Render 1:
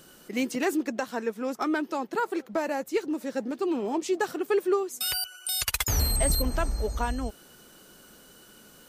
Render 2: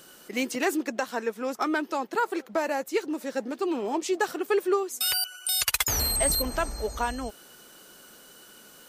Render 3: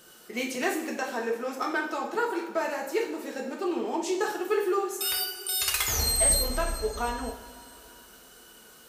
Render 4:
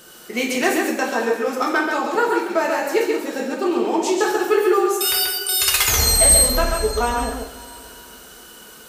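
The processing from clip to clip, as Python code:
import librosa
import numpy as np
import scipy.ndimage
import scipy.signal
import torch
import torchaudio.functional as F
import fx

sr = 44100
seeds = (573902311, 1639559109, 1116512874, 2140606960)

y1 = fx.low_shelf(x, sr, hz=240.0, db=-11.0)
y1 = y1 * 10.0 ** (3.0 / 20.0)
y2 = fx.rev_double_slope(y1, sr, seeds[0], early_s=0.6, late_s=3.6, knee_db=-18, drr_db=-1.0)
y2 = y2 * 10.0 ** (-4.5 / 20.0)
y3 = y2 + 10.0 ** (-4.5 / 20.0) * np.pad(y2, (int(135 * sr / 1000.0), 0))[:len(y2)]
y3 = y3 * 10.0 ** (8.5 / 20.0)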